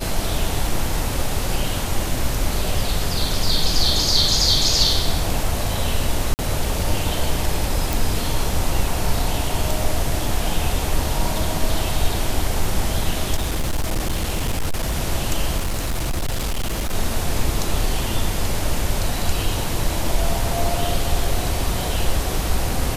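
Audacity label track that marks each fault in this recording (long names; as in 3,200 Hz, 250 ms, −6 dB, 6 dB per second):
6.340000	6.390000	drop-out 49 ms
7.930000	7.930000	click
13.360000	14.950000	clipping −17 dBFS
15.570000	16.940000	clipping −18.5 dBFS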